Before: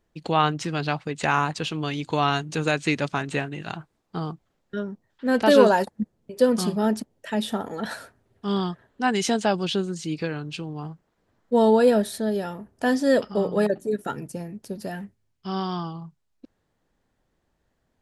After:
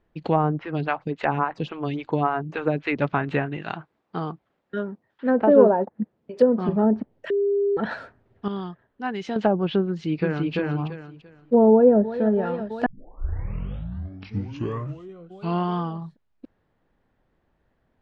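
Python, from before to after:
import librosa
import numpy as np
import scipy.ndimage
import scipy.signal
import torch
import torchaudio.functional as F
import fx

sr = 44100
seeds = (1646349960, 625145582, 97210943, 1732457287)

y = fx.stagger_phaser(x, sr, hz=3.6, at=(0.58, 3.0), fade=0.02)
y = fx.highpass(y, sr, hz=230.0, slope=6, at=(3.57, 6.69))
y = fx.echo_throw(y, sr, start_s=9.88, length_s=0.65, ms=340, feedback_pct=25, wet_db=-1.0)
y = fx.echo_throw(y, sr, start_s=11.71, length_s=0.49, ms=330, feedback_pct=85, wet_db=-15.0)
y = fx.edit(y, sr, fx.bleep(start_s=7.3, length_s=0.47, hz=402.0, db=-22.0),
    fx.clip_gain(start_s=8.48, length_s=0.88, db=-9.5),
    fx.tape_start(start_s=12.86, length_s=2.93), tone=tone)
y = scipy.signal.sosfilt(scipy.signal.butter(2, 2700.0, 'lowpass', fs=sr, output='sos'), y)
y = fx.env_lowpass_down(y, sr, base_hz=660.0, full_db=-18.0)
y = F.gain(torch.from_numpy(y), 3.5).numpy()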